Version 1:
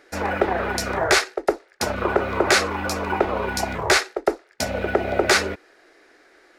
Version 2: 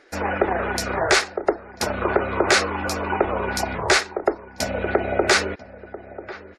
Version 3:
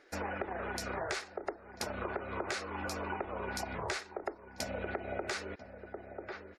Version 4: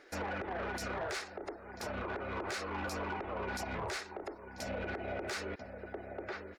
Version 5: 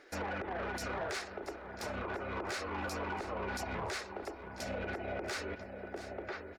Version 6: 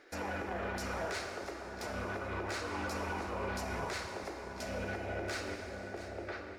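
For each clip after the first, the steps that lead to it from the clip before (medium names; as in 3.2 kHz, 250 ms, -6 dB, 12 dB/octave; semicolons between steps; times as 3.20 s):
echo from a far wall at 170 m, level -15 dB; spectral gate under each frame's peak -30 dB strong
compression 6:1, threshold -26 dBFS, peak gain reduction 13 dB; trim -8.5 dB
peak limiter -29.5 dBFS, peak gain reduction 9 dB; saturation -35.5 dBFS, distortion -15 dB; trim +3.5 dB
feedback delay 680 ms, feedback 31%, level -13 dB
plate-style reverb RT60 2.8 s, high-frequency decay 0.85×, DRR 3 dB; trim -1.5 dB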